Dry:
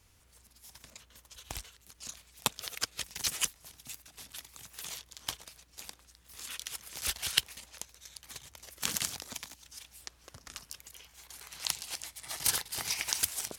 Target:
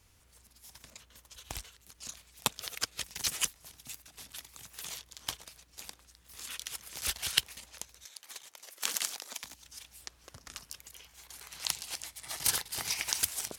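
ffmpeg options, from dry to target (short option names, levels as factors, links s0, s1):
-filter_complex "[0:a]asettb=1/sr,asplit=3[s0][s1][s2];[s0]atrim=end=8.054[s3];[s1]atrim=start=8.05:end=9.44,asetpts=PTS-STARTPTS,afade=t=in:d=0.004:c=qsin,afade=t=out:st=1.386:d=0.004:c=qsin,highpass=420[s4];[s2]atrim=start=9.436[s5];[s3][s4]acrossfade=d=0.004:c1=hsin:c2=qsin[s6];[s6][s5]acrossfade=d=0.004:c1=qsin:c2=hsin"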